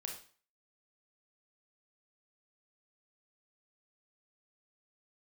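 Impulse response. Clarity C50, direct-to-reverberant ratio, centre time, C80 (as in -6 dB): 6.0 dB, 1.0 dB, 27 ms, 10.5 dB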